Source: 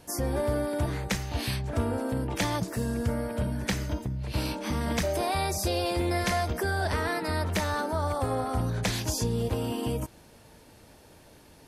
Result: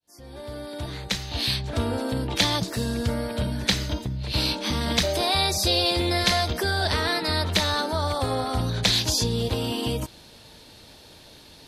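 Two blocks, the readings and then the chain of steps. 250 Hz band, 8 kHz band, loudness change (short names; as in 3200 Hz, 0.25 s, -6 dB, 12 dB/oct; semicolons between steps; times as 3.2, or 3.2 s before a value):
+2.0 dB, +5.0 dB, +5.0 dB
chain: opening faded in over 1.93 s; bell 3900 Hz +14 dB 0.88 oct; gain +2.5 dB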